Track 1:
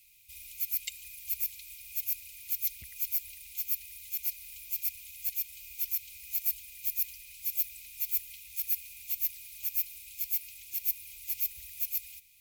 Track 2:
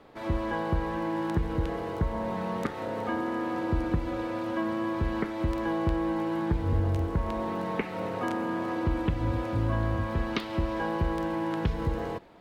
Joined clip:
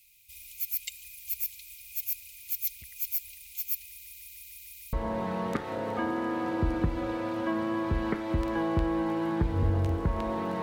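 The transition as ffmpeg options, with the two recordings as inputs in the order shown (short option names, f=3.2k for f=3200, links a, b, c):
-filter_complex "[0:a]apad=whole_dur=10.62,atrim=end=10.62,asplit=7[a][b][c][d][e][f][g];[a]atrim=end=4.032[h];[b]atrim=start=3.878:end=4.032[i];[c]atrim=start=3.878:end=4.032[j];[d]atrim=start=3.878:end=4.032[k];[e]atrim=start=3.878:end=4.032[l];[f]atrim=start=3.878:end=4.032[m];[g]atrim=start=3.878:end=4.032[n];[1:a]atrim=start=2.028:end=7.72[o];[h][i]acrossfade=d=0.004:c1=hsin:c2=hsin[p];[p][j]acrossfade=d=0.004:c1=hsin:c2=hsin[q];[q][k]acrossfade=d=0.004:c1=hsin:c2=hsin[r];[r][l]acrossfade=d=0.004:c1=hsin:c2=hsin[s];[s][m]acrossfade=d=0.004:c1=hsin:c2=hsin[t];[t][n]acrossfade=d=0.004:c1=hsin:c2=hsin[u];[u][o]acrossfade=d=0.004:c1=hsin:c2=hsin"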